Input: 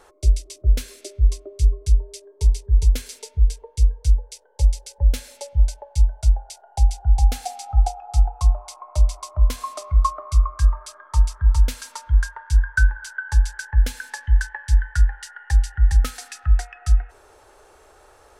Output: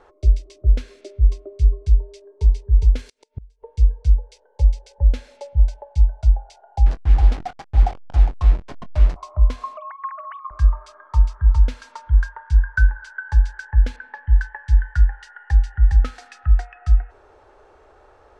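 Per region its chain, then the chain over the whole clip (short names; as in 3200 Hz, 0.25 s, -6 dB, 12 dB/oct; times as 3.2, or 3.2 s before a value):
2.99–3.63 high shelf 5900 Hz +8 dB + flipped gate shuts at -19 dBFS, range -30 dB
6.86–9.16 level-crossing sampler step -27 dBFS + doubler 23 ms -12.5 dB
9.77–10.51 sine-wave speech + HPF 1300 Hz + compressor 3:1, threshold -29 dBFS
13.96–14.68 low-pass opened by the level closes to 1700 Hz, open at -12.5 dBFS + high shelf 4700 Hz -5 dB
whole clip: LPF 5200 Hz 12 dB/oct; high shelf 2500 Hz -11 dB; gain +1.5 dB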